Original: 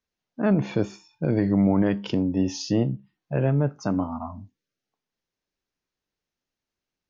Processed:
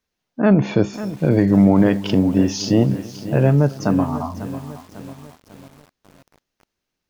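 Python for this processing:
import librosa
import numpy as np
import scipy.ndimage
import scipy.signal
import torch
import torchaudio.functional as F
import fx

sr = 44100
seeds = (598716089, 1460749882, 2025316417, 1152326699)

p1 = x + fx.echo_filtered(x, sr, ms=271, feedback_pct=40, hz=3400.0, wet_db=-22.0, dry=0)
p2 = fx.echo_crushed(p1, sr, ms=546, feedback_pct=55, bits=7, wet_db=-13)
y = p2 * librosa.db_to_amplitude(7.0)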